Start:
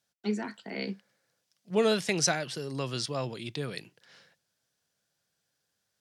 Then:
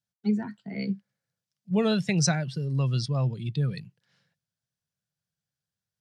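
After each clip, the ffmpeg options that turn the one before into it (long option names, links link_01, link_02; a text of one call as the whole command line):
ffmpeg -i in.wav -af "lowshelf=frequency=220:width_type=q:width=1.5:gain=10.5,afftdn=noise_reduction=13:noise_floor=-36" out.wav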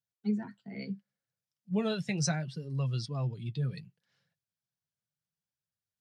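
ffmpeg -i in.wav -af "flanger=delay=1.2:depth=7.8:regen=-38:speed=0.7:shape=triangular,volume=-3dB" out.wav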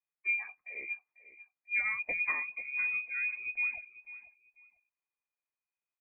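ffmpeg -i in.wav -af "lowpass=frequency=2200:width_type=q:width=0.5098,lowpass=frequency=2200:width_type=q:width=0.6013,lowpass=frequency=2200:width_type=q:width=0.9,lowpass=frequency=2200:width_type=q:width=2.563,afreqshift=-2600,aecho=1:1:494|988:0.158|0.038,volume=-1.5dB" out.wav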